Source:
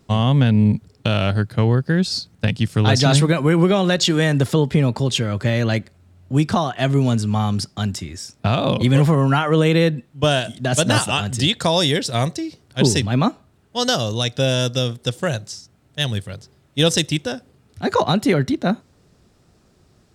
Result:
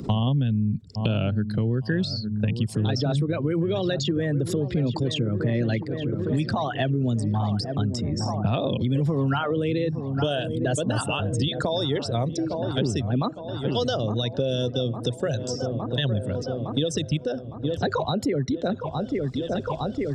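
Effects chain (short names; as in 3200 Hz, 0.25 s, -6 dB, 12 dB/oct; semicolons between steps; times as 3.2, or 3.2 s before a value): formant sharpening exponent 2; dark delay 0.86 s, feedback 60%, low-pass 1200 Hz, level -14 dB; in parallel at -2 dB: compressor, threshold -28 dBFS, peak gain reduction 16.5 dB; on the sum: limiter -8.5 dBFS, peak gain reduction 5.5 dB; three-band squash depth 100%; gain -7.5 dB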